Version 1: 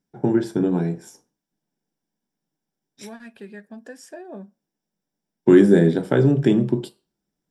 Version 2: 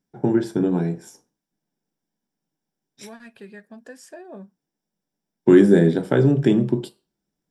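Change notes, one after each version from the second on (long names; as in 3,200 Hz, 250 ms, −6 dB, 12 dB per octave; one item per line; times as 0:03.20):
second voice: send off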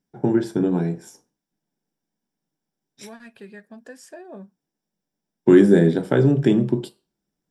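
nothing changed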